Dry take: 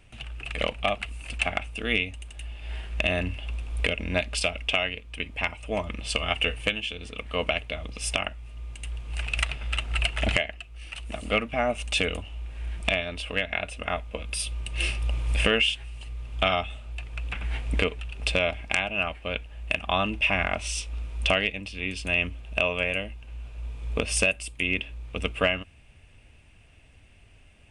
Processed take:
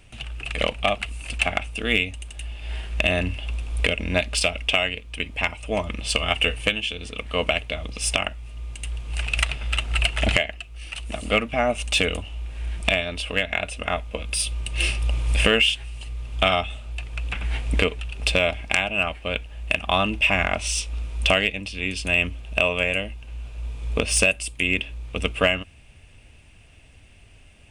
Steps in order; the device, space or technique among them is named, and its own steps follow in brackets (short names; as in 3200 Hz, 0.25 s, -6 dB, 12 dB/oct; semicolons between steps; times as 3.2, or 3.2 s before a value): exciter from parts (in parallel at -6.5 dB: HPF 2600 Hz 12 dB/oct + soft clip -27.5 dBFS, distortion -8 dB); on the sum: gain +4 dB